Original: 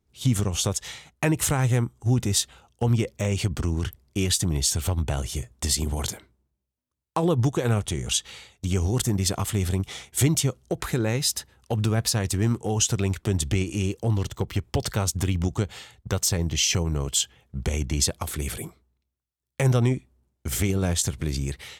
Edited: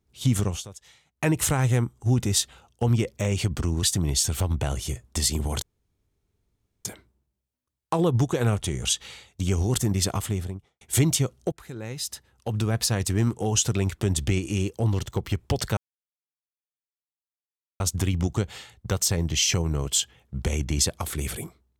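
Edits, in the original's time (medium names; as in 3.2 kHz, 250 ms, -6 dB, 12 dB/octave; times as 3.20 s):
0.50–1.27 s: dip -16.5 dB, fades 0.13 s
3.83–4.30 s: delete
6.09 s: insert room tone 1.23 s
9.34–10.05 s: studio fade out
10.76–12.18 s: fade in, from -21 dB
15.01 s: insert silence 2.03 s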